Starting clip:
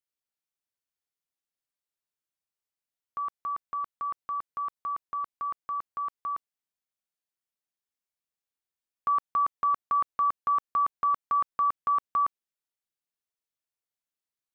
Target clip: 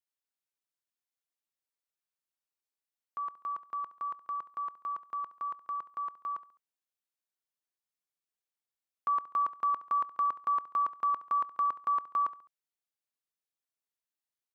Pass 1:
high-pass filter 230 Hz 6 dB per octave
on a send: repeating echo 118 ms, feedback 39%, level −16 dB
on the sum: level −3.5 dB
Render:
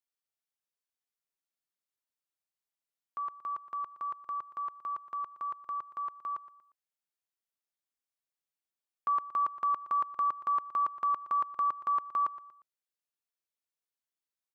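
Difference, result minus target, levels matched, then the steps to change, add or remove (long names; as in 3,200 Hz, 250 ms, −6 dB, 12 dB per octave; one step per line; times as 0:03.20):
echo 49 ms late
change: repeating echo 69 ms, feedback 39%, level −16 dB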